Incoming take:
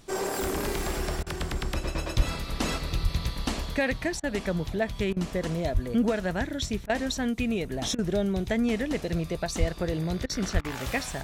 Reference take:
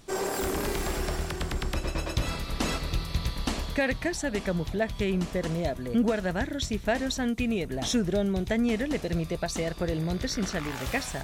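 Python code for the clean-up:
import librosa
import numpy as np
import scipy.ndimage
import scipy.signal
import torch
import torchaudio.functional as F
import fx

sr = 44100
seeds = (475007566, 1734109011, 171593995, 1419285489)

y = fx.fix_deplosive(x, sr, at_s=(2.16, 3.02, 5.73, 9.59, 10.53))
y = fx.fix_interpolate(y, sr, at_s=(1.23, 4.2, 5.13, 6.86, 7.95, 10.26, 10.61), length_ms=34.0)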